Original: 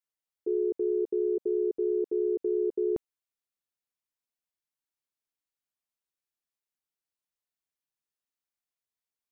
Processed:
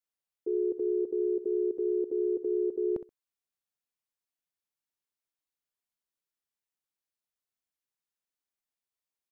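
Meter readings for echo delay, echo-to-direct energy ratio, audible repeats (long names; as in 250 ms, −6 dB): 64 ms, −13.0 dB, 2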